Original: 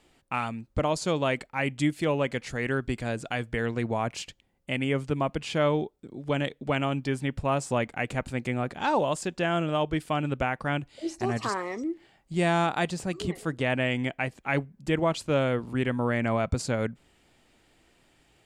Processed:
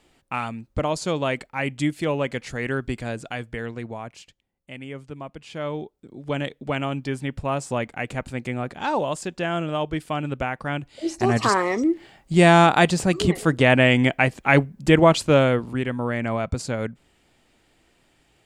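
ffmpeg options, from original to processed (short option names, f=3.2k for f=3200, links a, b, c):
-af "volume=21.5dB,afade=t=out:st=2.9:d=1.29:silence=0.281838,afade=t=in:st=5.43:d=0.91:silence=0.316228,afade=t=in:st=10.78:d=0.79:silence=0.334965,afade=t=out:st=15.13:d=0.7:silence=0.334965"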